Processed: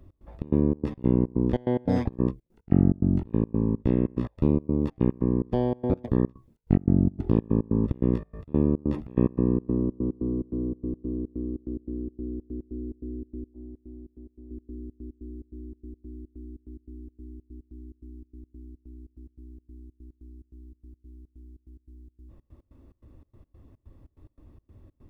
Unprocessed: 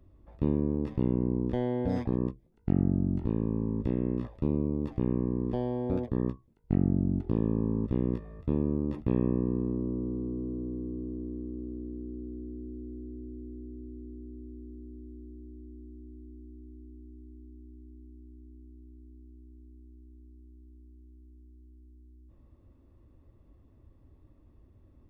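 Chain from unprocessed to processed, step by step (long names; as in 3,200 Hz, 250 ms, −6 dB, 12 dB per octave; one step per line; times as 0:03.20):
0:13.54–0:14.51: downward expander −36 dBFS
gate pattern "x.xx.xx." 144 BPM −24 dB
level +6.5 dB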